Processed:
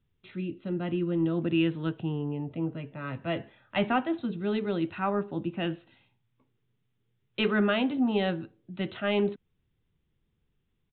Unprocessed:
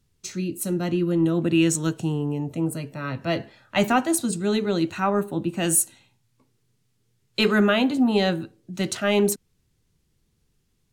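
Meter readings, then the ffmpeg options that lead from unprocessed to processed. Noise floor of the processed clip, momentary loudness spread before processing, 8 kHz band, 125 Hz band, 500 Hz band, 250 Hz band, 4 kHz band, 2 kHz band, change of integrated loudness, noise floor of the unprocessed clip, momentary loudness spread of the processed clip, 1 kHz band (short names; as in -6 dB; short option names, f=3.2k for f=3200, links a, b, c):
-76 dBFS, 10 LU, under -40 dB, -6.0 dB, -6.0 dB, -6.0 dB, -7.5 dB, -6.0 dB, -6.5 dB, -70 dBFS, 11 LU, -6.0 dB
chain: -af "aresample=8000,aresample=44100,volume=-6dB"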